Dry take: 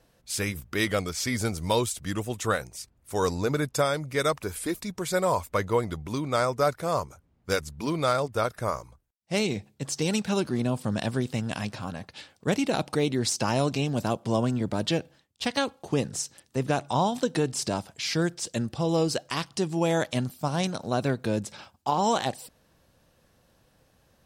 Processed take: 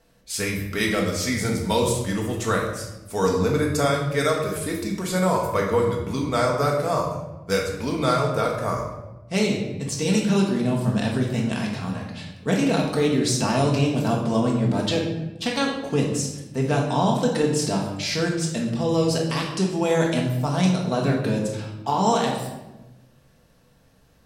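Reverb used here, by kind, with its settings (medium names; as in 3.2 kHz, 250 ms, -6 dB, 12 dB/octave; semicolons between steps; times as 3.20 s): simulated room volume 430 m³, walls mixed, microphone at 1.6 m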